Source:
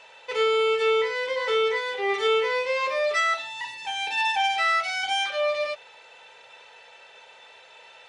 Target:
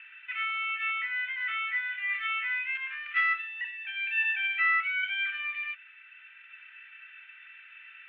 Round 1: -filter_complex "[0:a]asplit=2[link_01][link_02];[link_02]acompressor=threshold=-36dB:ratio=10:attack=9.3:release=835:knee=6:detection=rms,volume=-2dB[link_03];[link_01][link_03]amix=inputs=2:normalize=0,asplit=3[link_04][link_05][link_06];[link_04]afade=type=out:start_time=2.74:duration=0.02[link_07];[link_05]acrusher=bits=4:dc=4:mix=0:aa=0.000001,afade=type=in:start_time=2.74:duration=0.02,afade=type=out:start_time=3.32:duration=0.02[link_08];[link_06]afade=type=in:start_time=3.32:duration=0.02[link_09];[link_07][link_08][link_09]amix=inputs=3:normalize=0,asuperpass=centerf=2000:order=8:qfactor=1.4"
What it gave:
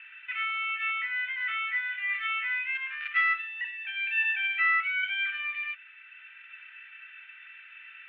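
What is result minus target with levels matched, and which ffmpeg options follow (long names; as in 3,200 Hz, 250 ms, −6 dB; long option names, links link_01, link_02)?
downward compressor: peak gain reduction −10.5 dB
-filter_complex "[0:a]asplit=2[link_01][link_02];[link_02]acompressor=threshold=-47.5dB:ratio=10:attack=9.3:release=835:knee=6:detection=rms,volume=-2dB[link_03];[link_01][link_03]amix=inputs=2:normalize=0,asplit=3[link_04][link_05][link_06];[link_04]afade=type=out:start_time=2.74:duration=0.02[link_07];[link_05]acrusher=bits=4:dc=4:mix=0:aa=0.000001,afade=type=in:start_time=2.74:duration=0.02,afade=type=out:start_time=3.32:duration=0.02[link_08];[link_06]afade=type=in:start_time=3.32:duration=0.02[link_09];[link_07][link_08][link_09]amix=inputs=3:normalize=0,asuperpass=centerf=2000:order=8:qfactor=1.4"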